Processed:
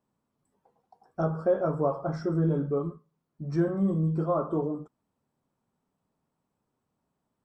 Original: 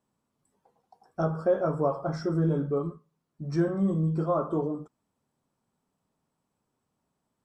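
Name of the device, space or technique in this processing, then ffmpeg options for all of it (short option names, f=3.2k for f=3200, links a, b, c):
behind a face mask: -af "highshelf=f=2.7k:g=-7"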